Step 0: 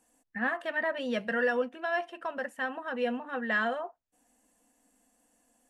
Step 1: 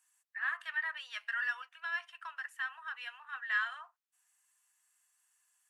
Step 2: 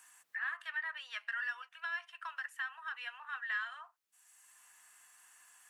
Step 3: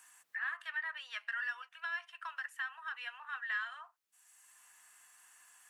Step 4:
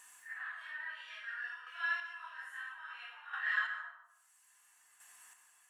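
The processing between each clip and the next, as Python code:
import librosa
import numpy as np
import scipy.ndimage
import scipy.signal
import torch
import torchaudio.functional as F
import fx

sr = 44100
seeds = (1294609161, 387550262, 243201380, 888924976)

y1 = scipy.signal.sosfilt(scipy.signal.butter(6, 1100.0, 'highpass', fs=sr, output='sos'), x)
y1 = y1 * 10.0 ** (-2.5 / 20.0)
y2 = fx.band_squash(y1, sr, depth_pct=70)
y2 = y2 * 10.0 ** (-2.5 / 20.0)
y3 = y2
y4 = fx.phase_scramble(y3, sr, seeds[0], window_ms=200)
y4 = fx.chopper(y4, sr, hz=0.6, depth_pct=60, duty_pct=20)
y4 = fx.rev_plate(y4, sr, seeds[1], rt60_s=0.8, hf_ratio=0.5, predelay_ms=110, drr_db=9.0)
y4 = y4 * 10.0 ** (3.0 / 20.0)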